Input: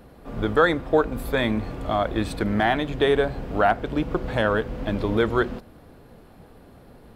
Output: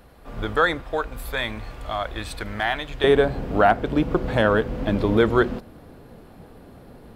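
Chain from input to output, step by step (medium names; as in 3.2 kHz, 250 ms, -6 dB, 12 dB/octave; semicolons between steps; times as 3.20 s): peaking EQ 240 Hz -8 dB 2.8 oct, from 0.82 s -14.5 dB, from 3.04 s +2 dB; trim +2 dB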